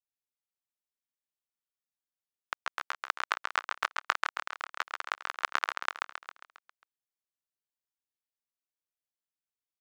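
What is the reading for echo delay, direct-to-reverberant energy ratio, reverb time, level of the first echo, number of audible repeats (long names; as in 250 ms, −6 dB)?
135 ms, no reverb audible, no reverb audible, −4.0 dB, 6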